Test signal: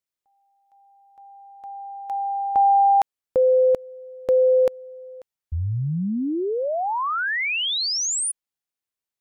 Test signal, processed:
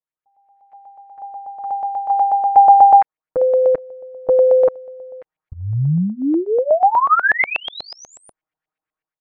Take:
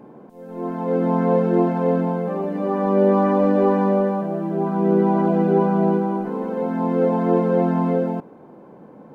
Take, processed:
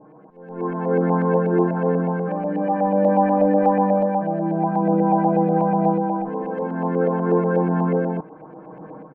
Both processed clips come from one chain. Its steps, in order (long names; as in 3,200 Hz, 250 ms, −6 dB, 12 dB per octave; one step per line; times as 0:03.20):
comb filter 6.4 ms, depth 93%
dynamic equaliser 3,000 Hz, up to −6 dB, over −47 dBFS, Q 4
automatic gain control gain up to 12 dB
auto-filter low-pass saw up 8.2 Hz 700–2,400 Hz
level −8.5 dB